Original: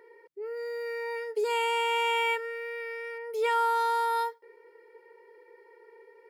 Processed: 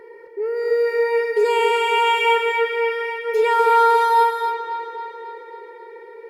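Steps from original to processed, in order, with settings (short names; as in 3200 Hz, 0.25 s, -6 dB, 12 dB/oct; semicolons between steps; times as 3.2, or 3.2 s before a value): tilt -1.5 dB/oct; in parallel at 0 dB: limiter -26 dBFS, peak gain reduction 9 dB; on the sum: dark delay 0.271 s, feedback 60%, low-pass 3800 Hz, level -6.5 dB; non-linear reverb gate 0.28 s rising, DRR 4.5 dB; gain +5 dB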